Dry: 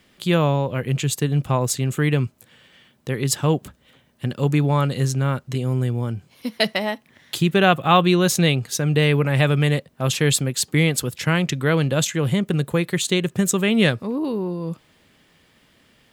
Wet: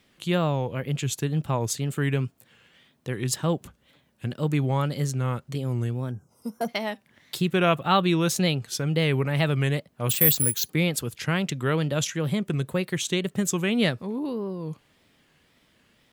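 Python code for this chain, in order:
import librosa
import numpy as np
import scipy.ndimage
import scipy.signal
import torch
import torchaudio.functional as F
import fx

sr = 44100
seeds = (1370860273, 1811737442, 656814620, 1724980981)

y = fx.spec_box(x, sr, start_s=6.11, length_s=0.57, low_hz=1600.0, high_hz=5200.0, gain_db=-22)
y = fx.resample_bad(y, sr, factor=4, down='filtered', up='zero_stuff', at=(10.09, 10.69))
y = fx.wow_flutter(y, sr, seeds[0], rate_hz=2.1, depth_cents=140.0)
y = F.gain(torch.from_numpy(y), -5.5).numpy()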